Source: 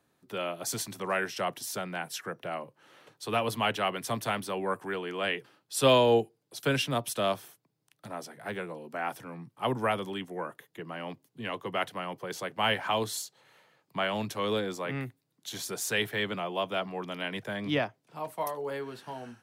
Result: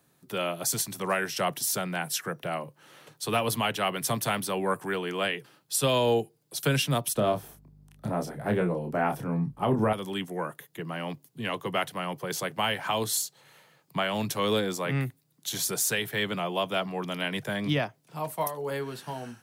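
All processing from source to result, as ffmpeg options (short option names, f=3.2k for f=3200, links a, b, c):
-filter_complex "[0:a]asettb=1/sr,asplit=3[a][b][c];[a]atrim=end=7.154[d];[b]atrim=start=7.15:end=9.93,asetpts=PTS-STARTPTS,afade=t=in:d=0.004:c=qsin,afade=t=out:st=2.776:d=0.004:c=qsin,tiltshelf=f=1.3k:g=8,asplit=2[e][f];[f]adelay=28,volume=-5.5dB[g];[e][g]amix=inputs=2:normalize=0,atrim=end_sample=122598,aeval=exprs='val(0)+0.001*(sin(2*PI*50*n/s)+sin(2*PI*2*50*n/s)/2+sin(2*PI*3*50*n/s)/3+sin(2*PI*4*50*n/s)/4+sin(2*PI*5*50*n/s)/5)':c=same[h];[c]atrim=start=9.926[i];[d][h]acrossfade=d=0.004:c1=hsin:c2=qsin[j];[j][i]acrossfade=d=0.004:c1=qsin:c2=hsin,highshelf=f=6.2k:g=10,alimiter=limit=-19dB:level=0:latency=1:release=261,equalizer=f=150:w=3:g=8,volume=3dB"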